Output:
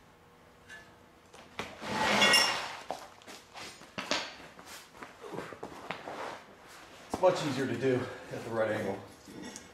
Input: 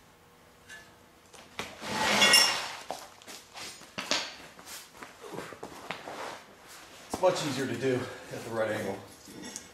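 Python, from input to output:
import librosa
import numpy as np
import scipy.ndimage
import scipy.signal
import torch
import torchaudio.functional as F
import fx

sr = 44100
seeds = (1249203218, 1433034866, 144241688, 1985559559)

y = fx.high_shelf(x, sr, hz=3900.0, db=-8.0)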